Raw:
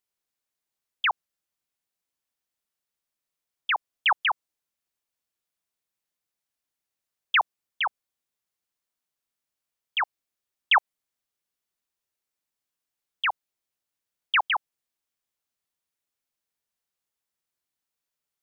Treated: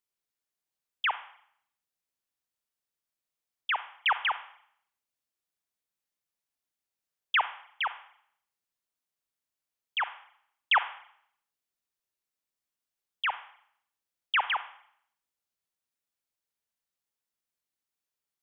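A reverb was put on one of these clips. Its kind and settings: Schroeder reverb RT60 0.65 s, combs from 32 ms, DRR 12 dB; trim -4 dB

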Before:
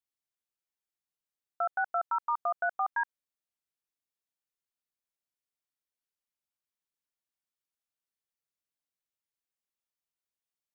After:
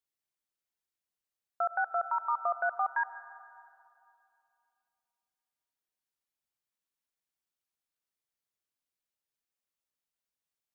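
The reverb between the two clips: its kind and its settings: algorithmic reverb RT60 2.7 s, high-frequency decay 0.6×, pre-delay 60 ms, DRR 13.5 dB

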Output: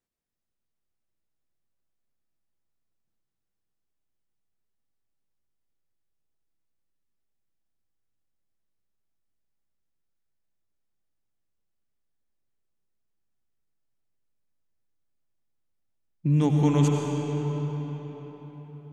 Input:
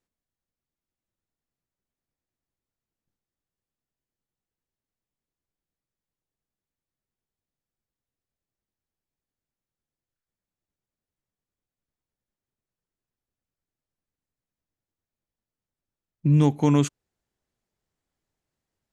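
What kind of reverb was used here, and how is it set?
algorithmic reverb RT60 4.9 s, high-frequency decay 0.7×, pre-delay 55 ms, DRR -0.5 dB; trim -3.5 dB

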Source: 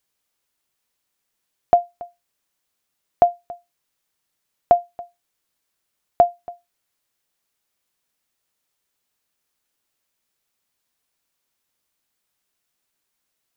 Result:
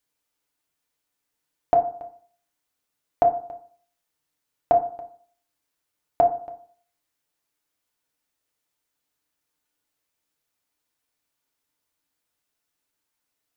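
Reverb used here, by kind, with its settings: FDN reverb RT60 0.5 s, low-frequency decay 1×, high-frequency decay 0.35×, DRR 2.5 dB; trim -4.5 dB

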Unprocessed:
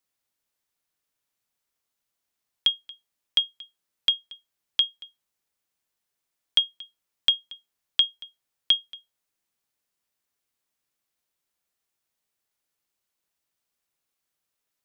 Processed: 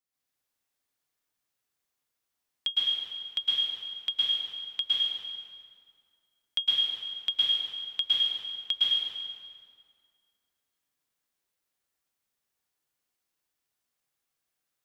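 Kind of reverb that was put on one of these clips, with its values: plate-style reverb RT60 2.1 s, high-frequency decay 0.75×, pre-delay 100 ms, DRR -8 dB; trim -9 dB

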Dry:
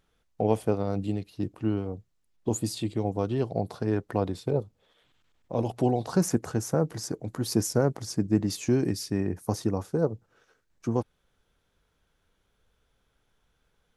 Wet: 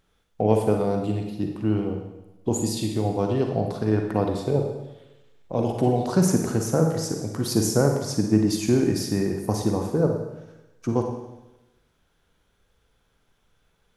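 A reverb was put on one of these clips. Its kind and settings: Schroeder reverb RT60 1 s, DRR 3 dB; trim +3 dB

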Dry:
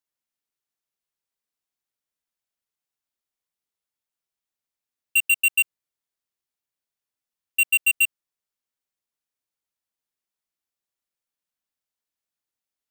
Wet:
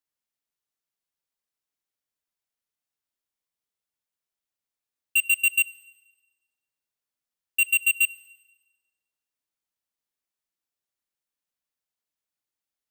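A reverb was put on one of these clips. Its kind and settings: FDN reverb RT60 1.2 s, low-frequency decay 1×, high-frequency decay 1×, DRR 19 dB; trim -1.5 dB

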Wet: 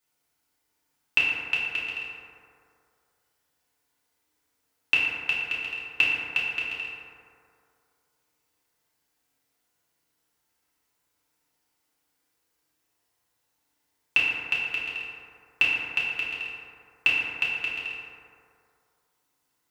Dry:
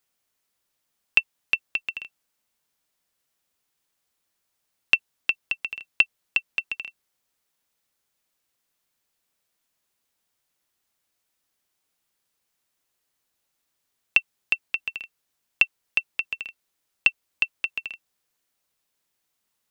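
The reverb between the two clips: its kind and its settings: FDN reverb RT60 2.4 s, low-frequency decay 0.85×, high-frequency decay 0.35×, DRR -8 dB; trim -5 dB

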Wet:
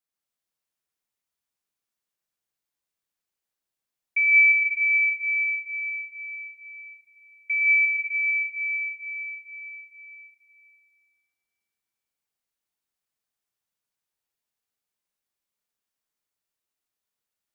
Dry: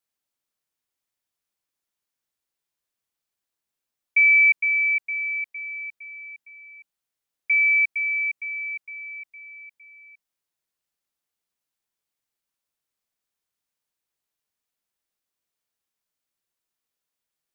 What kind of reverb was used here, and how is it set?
plate-style reverb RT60 2.2 s, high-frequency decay 0.9×, pre-delay 100 ms, DRR -1.5 dB; trim -5.5 dB

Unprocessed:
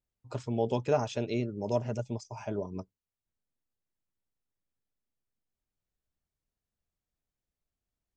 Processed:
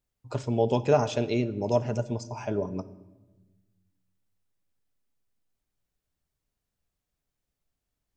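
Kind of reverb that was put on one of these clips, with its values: simulated room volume 700 m³, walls mixed, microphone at 0.31 m; trim +5 dB

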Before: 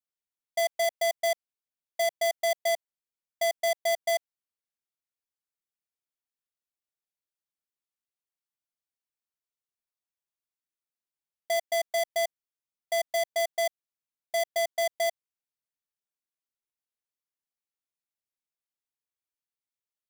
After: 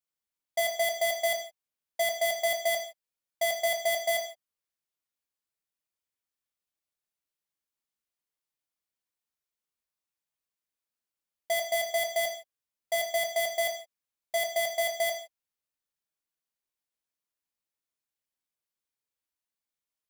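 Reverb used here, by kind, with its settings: gated-style reverb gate 190 ms falling, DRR 2.5 dB

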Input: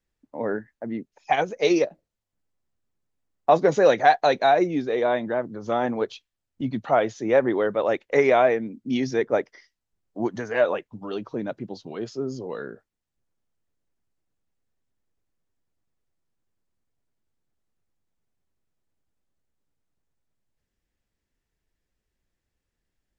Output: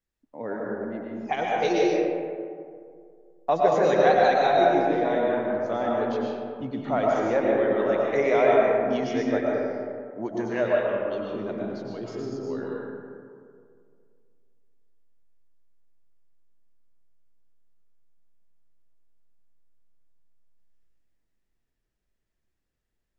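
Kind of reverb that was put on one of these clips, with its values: algorithmic reverb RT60 2.2 s, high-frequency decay 0.4×, pre-delay 75 ms, DRR -3.5 dB; trim -6.5 dB

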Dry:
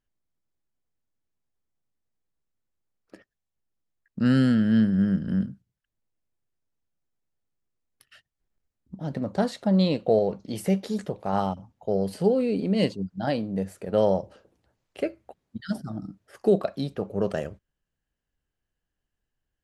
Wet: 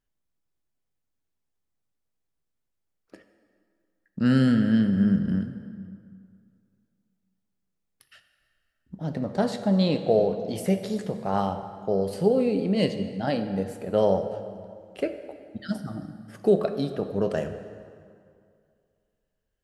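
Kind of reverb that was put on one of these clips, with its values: plate-style reverb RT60 2.3 s, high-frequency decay 0.7×, DRR 8 dB

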